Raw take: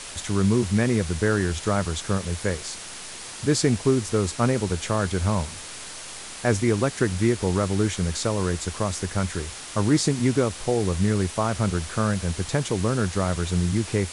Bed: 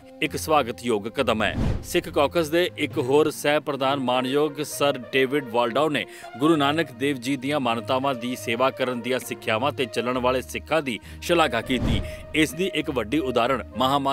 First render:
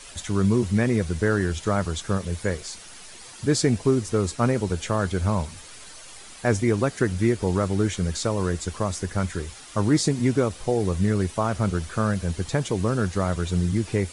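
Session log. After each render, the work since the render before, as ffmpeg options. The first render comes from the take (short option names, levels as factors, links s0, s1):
-af "afftdn=nr=9:nf=-38"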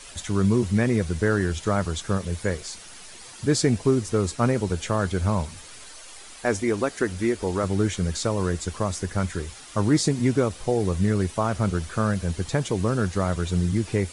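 -filter_complex "[0:a]asettb=1/sr,asplit=3[s0][s1][s2];[s0]atrim=end=5.864[s3];[s1]atrim=start=5.86:end=7.64,asetpts=PTS-STARTPTS,afade=t=in:d=0.004:c=qsin,afade=t=out:st=1.776:d=0.004:c=qsin,equalizer=f=130:t=o:w=0.77:g=-14.5[s4];[s2]atrim=start=7.636[s5];[s3][s4]acrossfade=d=0.004:c1=hsin:c2=qsin[s6];[s6][s5]acrossfade=d=0.004:c1=qsin:c2=hsin"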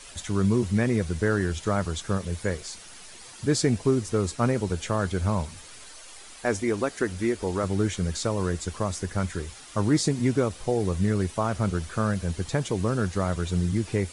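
-af "volume=0.794"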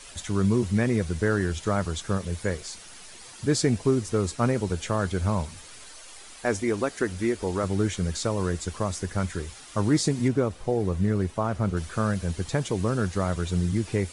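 -filter_complex "[0:a]asettb=1/sr,asplit=3[s0][s1][s2];[s0]atrim=end=10.284[s3];[s1]atrim=start=10.28:end=11.77,asetpts=PTS-STARTPTS,afade=t=in:d=0.004:c=qsin,afade=t=out:st=1.486:d=0.004:c=qsin,highshelf=f=2500:g=-8.5[s4];[s2]atrim=start=11.766[s5];[s3][s4]acrossfade=d=0.004:c1=hsin:c2=qsin[s6];[s6][s5]acrossfade=d=0.004:c1=qsin:c2=hsin"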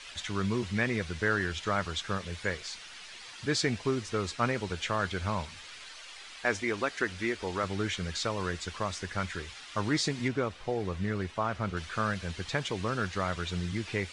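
-af "lowpass=3200,tiltshelf=f=1200:g=-9"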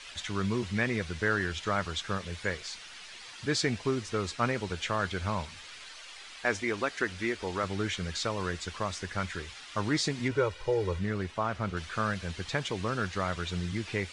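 -filter_complex "[0:a]asettb=1/sr,asplit=3[s0][s1][s2];[s0]atrim=end=10.314[s3];[s1]atrim=start=10.31:end=10.99,asetpts=PTS-STARTPTS,afade=t=in:d=0.004:c=qsin,afade=t=out:st=0.676:d=0.004:c=qsin,aecho=1:1:2.1:0.89,atrim=end_sample=29988[s4];[s2]atrim=start=10.986[s5];[s3][s4]acrossfade=d=0.004:c1=hsin:c2=qsin[s6];[s6][s5]acrossfade=d=0.004:c1=qsin:c2=hsin"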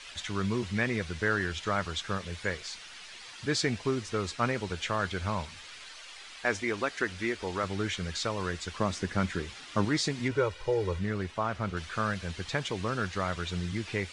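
-filter_complex "[0:a]asettb=1/sr,asplit=3[s0][s1][s2];[s0]atrim=end=8.794[s3];[s1]atrim=start=8.79:end=9.85,asetpts=PTS-STARTPTS,afade=t=in:d=0.004:c=qsin,afade=t=out:st=1.056:d=0.004:c=qsin,equalizer=f=230:w=0.62:g=9[s4];[s2]atrim=start=9.846[s5];[s3][s4]acrossfade=d=0.004:c1=hsin:c2=qsin[s6];[s6][s5]acrossfade=d=0.004:c1=qsin:c2=hsin"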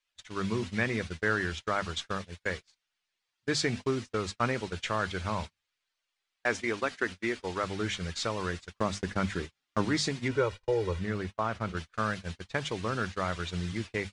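-af "bandreject=f=50:t=h:w=6,bandreject=f=100:t=h:w=6,bandreject=f=150:t=h:w=6,bandreject=f=200:t=h:w=6,bandreject=f=250:t=h:w=6,agate=range=0.0126:threshold=0.0178:ratio=16:detection=peak"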